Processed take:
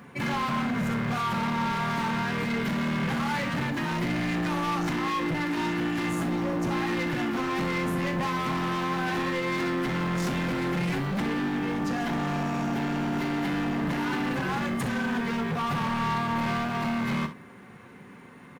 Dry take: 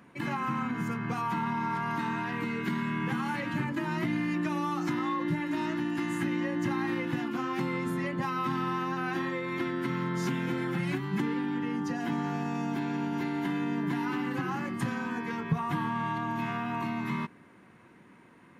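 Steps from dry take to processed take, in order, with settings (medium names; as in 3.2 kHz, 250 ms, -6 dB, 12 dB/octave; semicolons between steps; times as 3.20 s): time-frequency box 6.09–6.73 s, 1.4–3.4 kHz -8 dB; comb of notches 320 Hz; short-mantissa float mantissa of 4-bit; hard clipper -35.5 dBFS, distortion -7 dB; on a send: early reflections 40 ms -12 dB, 65 ms -13 dB; on the sum: trim +9 dB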